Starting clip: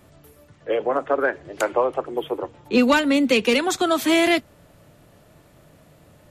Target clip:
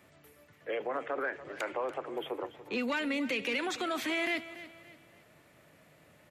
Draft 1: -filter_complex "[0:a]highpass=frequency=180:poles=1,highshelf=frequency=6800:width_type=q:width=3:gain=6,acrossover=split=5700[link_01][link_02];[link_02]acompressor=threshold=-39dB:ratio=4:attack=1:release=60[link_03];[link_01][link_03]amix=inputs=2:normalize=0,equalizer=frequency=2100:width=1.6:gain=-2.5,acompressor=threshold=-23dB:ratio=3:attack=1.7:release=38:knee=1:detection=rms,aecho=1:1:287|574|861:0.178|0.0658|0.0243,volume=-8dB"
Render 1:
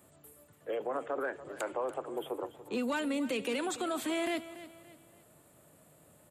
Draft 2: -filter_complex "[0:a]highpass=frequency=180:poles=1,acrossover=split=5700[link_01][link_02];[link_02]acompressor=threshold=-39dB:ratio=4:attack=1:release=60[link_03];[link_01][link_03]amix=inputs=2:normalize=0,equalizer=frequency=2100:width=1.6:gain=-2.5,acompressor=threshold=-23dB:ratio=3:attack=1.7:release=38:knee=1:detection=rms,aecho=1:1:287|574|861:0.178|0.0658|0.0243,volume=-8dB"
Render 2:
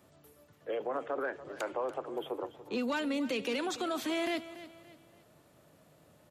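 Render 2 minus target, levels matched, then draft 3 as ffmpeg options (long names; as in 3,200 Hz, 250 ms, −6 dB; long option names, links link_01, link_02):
2,000 Hz band −4.5 dB
-filter_complex "[0:a]highpass=frequency=180:poles=1,acrossover=split=5700[link_01][link_02];[link_02]acompressor=threshold=-39dB:ratio=4:attack=1:release=60[link_03];[link_01][link_03]amix=inputs=2:normalize=0,equalizer=frequency=2100:width=1.6:gain=8.5,acompressor=threshold=-23dB:ratio=3:attack=1.7:release=38:knee=1:detection=rms,aecho=1:1:287|574|861:0.178|0.0658|0.0243,volume=-8dB"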